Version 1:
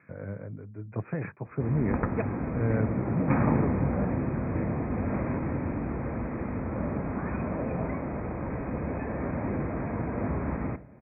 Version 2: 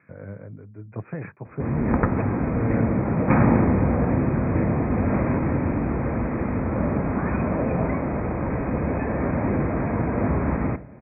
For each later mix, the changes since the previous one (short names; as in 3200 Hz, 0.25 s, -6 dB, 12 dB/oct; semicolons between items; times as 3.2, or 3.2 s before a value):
background +7.5 dB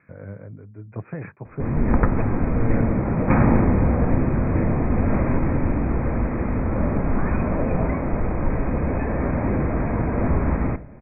master: remove HPF 80 Hz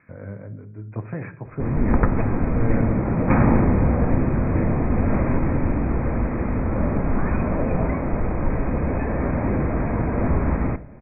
speech: send on